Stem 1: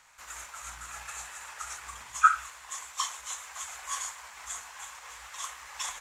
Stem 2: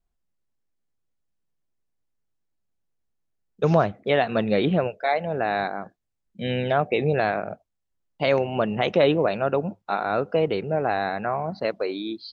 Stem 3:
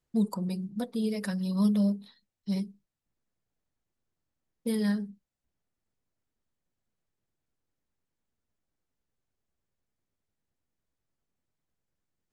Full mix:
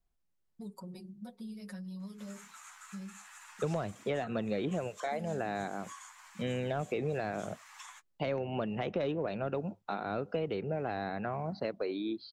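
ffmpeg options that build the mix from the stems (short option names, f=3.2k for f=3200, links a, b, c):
-filter_complex "[0:a]highpass=f=830:w=0.5412,highpass=f=830:w=1.3066,adelay=2000,volume=-4.5dB[a];[1:a]acontrast=49,volume=-8.5dB[b];[2:a]aecho=1:1:5.4:0.64,adelay=450,volume=-8.5dB[c];[a][c]amix=inputs=2:normalize=0,flanger=delay=5.7:depth=6.6:regen=-22:speed=0.21:shape=sinusoidal,acompressor=threshold=-41dB:ratio=6,volume=0dB[d];[b][d]amix=inputs=2:normalize=0,acrossover=split=360|2400[e][f][g];[e]acompressor=threshold=-36dB:ratio=4[h];[f]acompressor=threshold=-37dB:ratio=4[i];[g]acompressor=threshold=-52dB:ratio=4[j];[h][i][j]amix=inputs=3:normalize=0"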